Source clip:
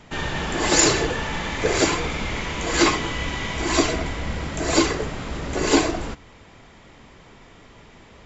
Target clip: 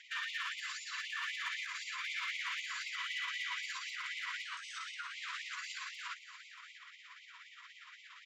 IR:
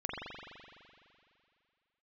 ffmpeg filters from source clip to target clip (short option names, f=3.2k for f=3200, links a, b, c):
-filter_complex "[0:a]aemphasis=mode=production:type=bsi,acompressor=threshold=-21dB:ratio=6,alimiter=limit=-22dB:level=0:latency=1:release=268,tremolo=f=17:d=0.44,asoftclip=type=tanh:threshold=-30dB,asettb=1/sr,asplit=3[a][b][c];[a]atrim=end=4.444[d];[b]atrim=start=4.44:end=5.14,asetpts=PTS-STARTPTS,afade=t=in:d=0.004:c=qsin,afade=t=out:st=0.696:d=0.004:c=qsin,aeval=exprs='val(0)*sin(2*PI*980*n/s)':c=same[e];[c]atrim=start=5.136[f];[d][e]acrossfade=d=0.004:c1=hsin:c2=qsin[g];[g][f]acrossfade=d=0.004:c1=qsin:c2=hsin,highpass=510,lowpass=3.1k,volume=32dB,asoftclip=hard,volume=-32dB,aecho=1:1:631:0.211,afftfilt=real='re*gte(b*sr/1024,930*pow(2000/930,0.5+0.5*sin(2*PI*3.9*pts/sr)))':imag='im*gte(b*sr/1024,930*pow(2000/930,0.5+0.5*sin(2*PI*3.9*pts/sr)))':win_size=1024:overlap=0.75,volume=1dB"